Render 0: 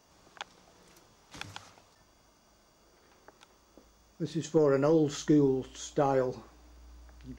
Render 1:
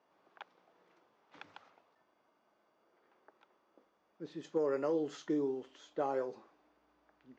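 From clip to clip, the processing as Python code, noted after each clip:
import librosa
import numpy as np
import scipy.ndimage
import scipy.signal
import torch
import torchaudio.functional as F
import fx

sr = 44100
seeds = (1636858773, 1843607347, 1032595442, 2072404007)

y = fx.env_lowpass(x, sr, base_hz=2800.0, full_db=-21.0)
y = scipy.signal.sosfilt(scipy.signal.butter(2, 310.0, 'highpass', fs=sr, output='sos'), y)
y = fx.high_shelf(y, sr, hz=3500.0, db=-8.0)
y = y * 10.0 ** (-6.5 / 20.0)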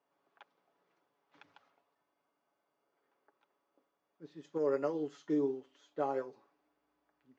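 y = x + 0.45 * np.pad(x, (int(7.1 * sr / 1000.0), 0))[:len(x)]
y = fx.upward_expand(y, sr, threshold_db=-46.0, expansion=1.5)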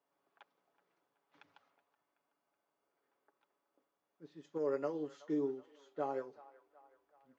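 y = fx.echo_wet_bandpass(x, sr, ms=375, feedback_pct=52, hz=1300.0, wet_db=-17)
y = y * 10.0 ** (-3.5 / 20.0)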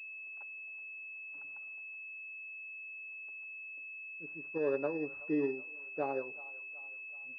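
y = fx.pwm(x, sr, carrier_hz=2600.0)
y = y * 10.0 ** (3.0 / 20.0)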